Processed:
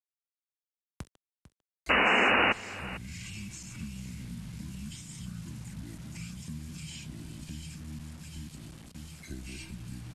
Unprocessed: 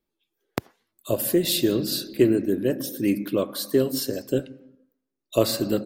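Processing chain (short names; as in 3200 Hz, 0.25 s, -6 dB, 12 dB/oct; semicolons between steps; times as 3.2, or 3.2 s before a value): regenerating reverse delay 0.419 s, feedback 43%, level -4 dB; gate -42 dBFS, range -19 dB; passive tone stack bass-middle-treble 10-0-1; transient shaper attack +1 dB, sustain +7 dB; compressor 3:1, threshold -46 dBFS, peak gain reduction 10.5 dB; painted sound noise, 1.09–1.46, 310–5100 Hz -22 dBFS; bit-crush 10-bit; echo 0.259 s -20.5 dB; speed mistake 78 rpm record played at 45 rpm; three-band squash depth 40%; gain +5.5 dB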